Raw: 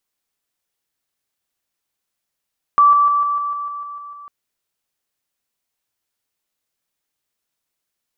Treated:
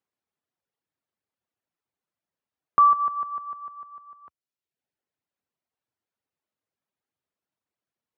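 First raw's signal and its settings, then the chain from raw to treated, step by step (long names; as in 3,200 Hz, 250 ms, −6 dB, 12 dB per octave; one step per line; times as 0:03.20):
level staircase 1,160 Hz −7.5 dBFS, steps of −3 dB, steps 10, 0.15 s 0.00 s
low-pass filter 1,000 Hz 6 dB per octave
reverb reduction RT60 0.87 s
high-pass filter 73 Hz 24 dB per octave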